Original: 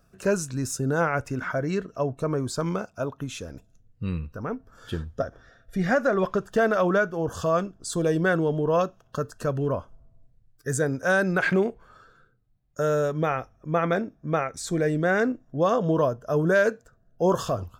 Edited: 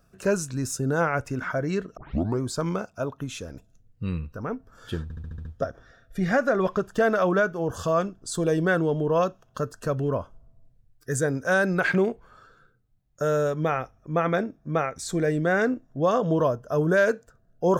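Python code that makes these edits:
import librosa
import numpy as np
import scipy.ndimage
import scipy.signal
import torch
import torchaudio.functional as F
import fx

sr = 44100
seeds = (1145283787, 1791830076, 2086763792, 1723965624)

y = fx.edit(x, sr, fx.tape_start(start_s=1.97, length_s=0.44),
    fx.stutter(start_s=5.03, slice_s=0.07, count=7), tone=tone)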